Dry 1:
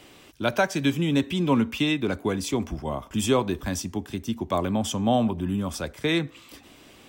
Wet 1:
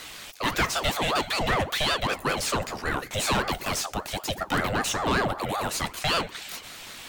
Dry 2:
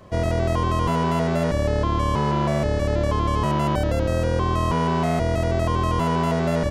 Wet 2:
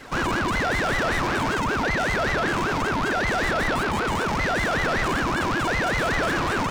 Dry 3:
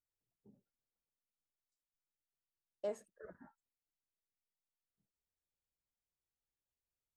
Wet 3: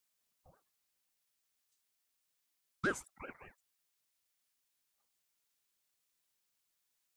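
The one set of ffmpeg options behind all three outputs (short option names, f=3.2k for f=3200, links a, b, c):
-filter_complex "[0:a]crystalizer=i=4:c=0,asplit=2[a][b];[b]highpass=f=720:p=1,volume=25dB,asoftclip=type=tanh:threshold=-4.5dB[c];[a][c]amix=inputs=2:normalize=0,lowpass=f=2.9k:p=1,volume=-6dB,aeval=exprs='val(0)*sin(2*PI*660*n/s+660*0.55/5.2*sin(2*PI*5.2*n/s))':c=same,volume=-7.5dB"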